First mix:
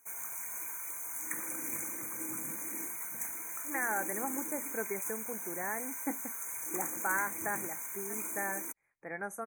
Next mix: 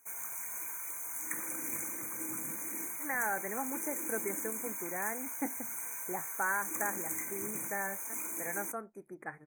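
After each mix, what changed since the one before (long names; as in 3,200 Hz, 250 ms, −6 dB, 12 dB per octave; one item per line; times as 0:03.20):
first voice: entry −0.65 s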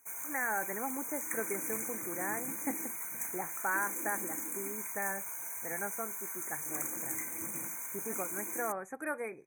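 first voice: entry −2.75 s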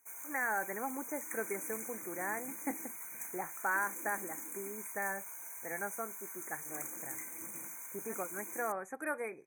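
background −5.5 dB
master: add low-shelf EQ 150 Hz −8 dB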